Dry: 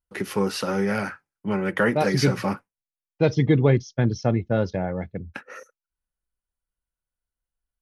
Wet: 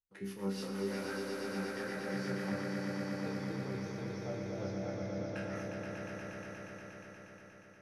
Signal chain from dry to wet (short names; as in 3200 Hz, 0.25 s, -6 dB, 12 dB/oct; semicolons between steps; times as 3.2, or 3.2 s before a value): wow and flutter 22 cents; harmonic-percussive split harmonic -7 dB; reverse; compressor, threshold -36 dBFS, peak gain reduction 19 dB; reverse; resonator bank C2 fifth, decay 0.57 s; rotary speaker horn 6 Hz, later 0.75 Hz, at 4.4; on a send: swelling echo 0.119 s, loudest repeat 5, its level -5 dB; on the sum: gain +10 dB